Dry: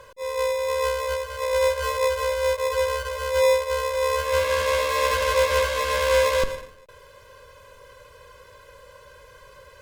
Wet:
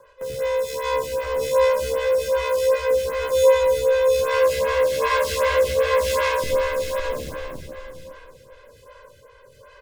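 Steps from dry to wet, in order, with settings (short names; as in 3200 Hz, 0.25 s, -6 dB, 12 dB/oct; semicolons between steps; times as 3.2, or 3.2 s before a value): on a send: feedback echo 0.559 s, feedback 35%, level -5.5 dB; on the sum: rotary speaker horn 1.1 Hz; 3.21–3.95 comb 2.3 ms, depth 41%; speakerphone echo 0.25 s, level -19 dB; in parallel at -7 dB: Schmitt trigger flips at -32 dBFS; on the sum: plate-style reverb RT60 2.9 s, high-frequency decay 0.85×, DRR -0.5 dB; photocell phaser 2.6 Hz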